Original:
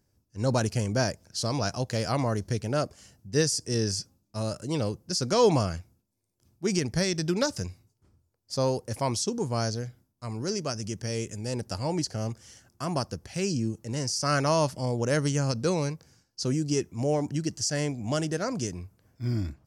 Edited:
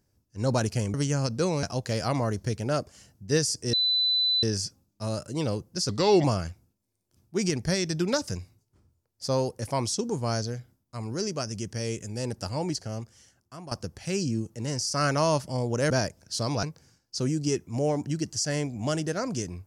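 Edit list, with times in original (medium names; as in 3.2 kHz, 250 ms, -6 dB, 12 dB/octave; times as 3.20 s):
0.94–1.67 s: swap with 15.19–15.88 s
3.77 s: add tone 4 kHz -21 dBFS 0.70 s
5.23–5.53 s: speed 85%
11.77–13.00 s: fade out, to -15 dB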